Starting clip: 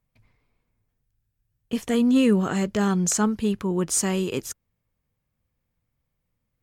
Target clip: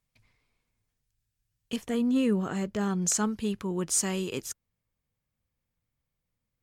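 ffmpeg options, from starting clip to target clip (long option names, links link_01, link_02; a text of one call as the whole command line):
ffmpeg -i in.wav -af "asetnsamples=nb_out_samples=441:pad=0,asendcmd='1.76 equalizer g -2.5;3.02 equalizer g 4',equalizer=frequency=6100:width=0.31:gain=11,volume=-6.5dB" out.wav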